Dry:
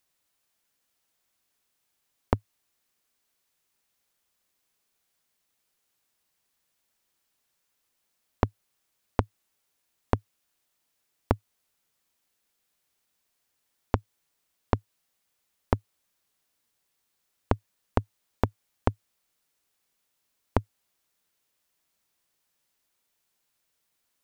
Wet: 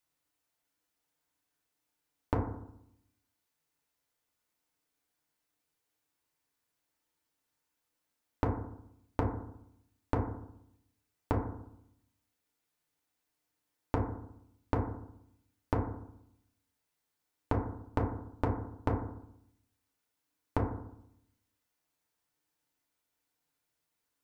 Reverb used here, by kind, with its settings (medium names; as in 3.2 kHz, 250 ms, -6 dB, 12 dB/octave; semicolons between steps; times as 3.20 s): FDN reverb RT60 0.75 s, low-frequency decay 1.25×, high-frequency decay 0.25×, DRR -2 dB; trim -9 dB